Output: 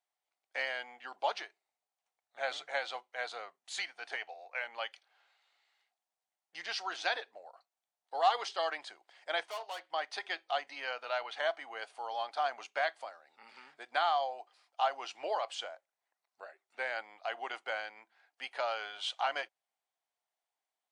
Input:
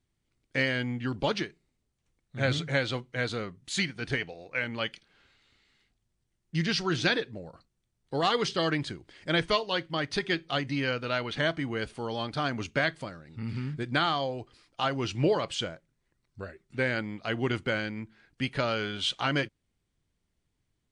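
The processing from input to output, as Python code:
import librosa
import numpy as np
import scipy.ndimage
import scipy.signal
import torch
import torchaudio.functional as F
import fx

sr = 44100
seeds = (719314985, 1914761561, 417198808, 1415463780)

y = fx.tube_stage(x, sr, drive_db=32.0, bias=0.5, at=(9.43, 9.87))
y = fx.ladder_highpass(y, sr, hz=670.0, resonance_pct=65)
y = F.gain(torch.from_numpy(y), 3.0).numpy()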